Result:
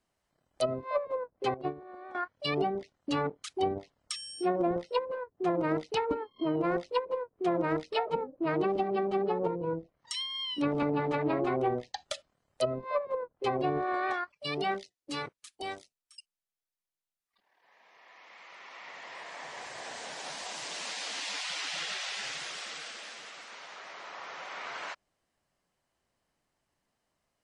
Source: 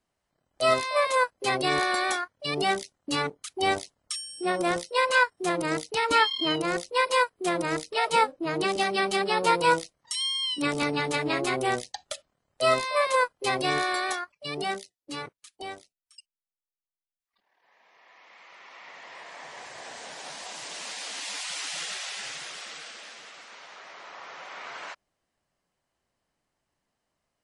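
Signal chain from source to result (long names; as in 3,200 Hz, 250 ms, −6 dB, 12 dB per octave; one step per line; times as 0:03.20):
treble cut that deepens with the level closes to 320 Hz, closed at −20 dBFS
0:01.54–0:02.15: noise gate −27 dBFS, range −15 dB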